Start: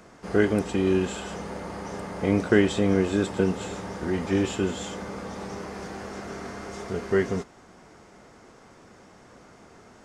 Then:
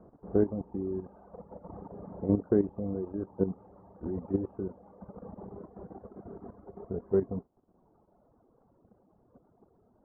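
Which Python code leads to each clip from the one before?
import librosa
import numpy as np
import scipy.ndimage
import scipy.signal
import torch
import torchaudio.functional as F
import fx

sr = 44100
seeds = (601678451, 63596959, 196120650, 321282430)

y = scipy.signal.sosfilt(scipy.signal.bessel(6, 640.0, 'lowpass', norm='mag', fs=sr, output='sos'), x)
y = fx.dereverb_blind(y, sr, rt60_s=2.0)
y = fx.level_steps(y, sr, step_db=11)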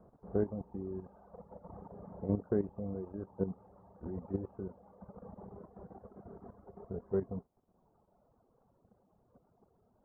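y = fx.peak_eq(x, sr, hz=310.0, db=-6.5, octaves=0.7)
y = y * 10.0 ** (-3.5 / 20.0)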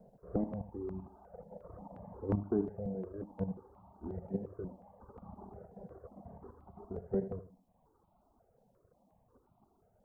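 y = fx.echo_feedback(x, sr, ms=79, feedback_pct=29, wet_db=-12)
y = fx.phaser_held(y, sr, hz=5.6, low_hz=320.0, high_hz=1700.0)
y = y * 10.0 ** (3.0 / 20.0)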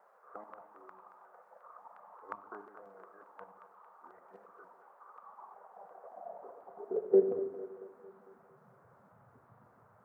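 y = fx.filter_sweep_highpass(x, sr, from_hz=1200.0, to_hz=120.0, start_s=5.31, end_s=8.95, q=4.0)
y = fx.echo_split(y, sr, split_hz=410.0, low_ms=140, high_ms=226, feedback_pct=52, wet_db=-10)
y = fx.dmg_noise_band(y, sr, seeds[0], low_hz=460.0, high_hz=1400.0, level_db=-66.0)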